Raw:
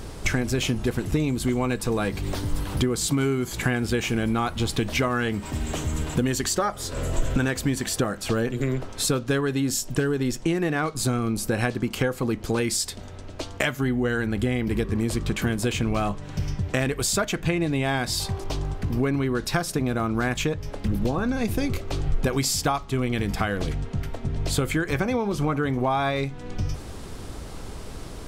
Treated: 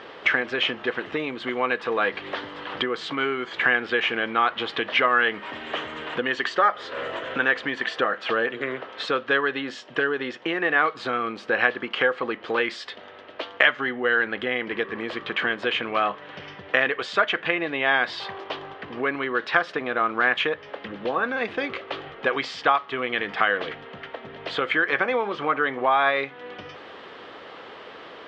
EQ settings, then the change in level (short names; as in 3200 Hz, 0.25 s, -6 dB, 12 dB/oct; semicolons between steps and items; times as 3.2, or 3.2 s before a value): dynamic EQ 1500 Hz, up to +3 dB, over -40 dBFS, Q 1.1; speaker cabinet 460–3500 Hz, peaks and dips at 500 Hz +4 dB, 1200 Hz +4 dB, 1800 Hz +7 dB, 3100 Hz +6 dB; +1.5 dB